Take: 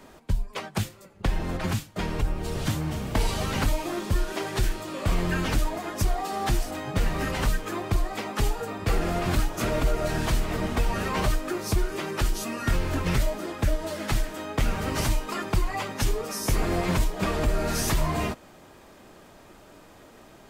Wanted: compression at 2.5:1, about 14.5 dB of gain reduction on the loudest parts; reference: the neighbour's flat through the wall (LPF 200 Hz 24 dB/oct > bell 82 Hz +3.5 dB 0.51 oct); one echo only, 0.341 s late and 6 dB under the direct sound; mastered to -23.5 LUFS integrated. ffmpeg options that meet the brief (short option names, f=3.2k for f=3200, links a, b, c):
-af "acompressor=threshold=-42dB:ratio=2.5,lowpass=f=200:w=0.5412,lowpass=f=200:w=1.3066,equalizer=f=82:t=o:w=0.51:g=3.5,aecho=1:1:341:0.501,volume=20dB"